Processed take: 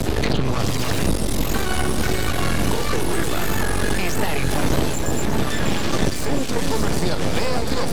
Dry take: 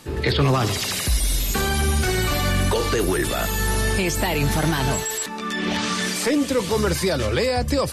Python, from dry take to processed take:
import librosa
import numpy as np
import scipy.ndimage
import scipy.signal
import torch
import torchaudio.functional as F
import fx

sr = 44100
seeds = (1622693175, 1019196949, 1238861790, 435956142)

p1 = fx.pitch_trill(x, sr, semitones=-1.0, every_ms=329)
p2 = fx.dmg_wind(p1, sr, seeds[0], corner_hz=300.0, level_db=-22.0)
p3 = np.maximum(p2, 0.0)
p4 = p3 + fx.echo_alternate(p3, sr, ms=298, hz=1400.0, feedback_pct=84, wet_db=-8.0, dry=0)
y = fx.band_squash(p4, sr, depth_pct=100)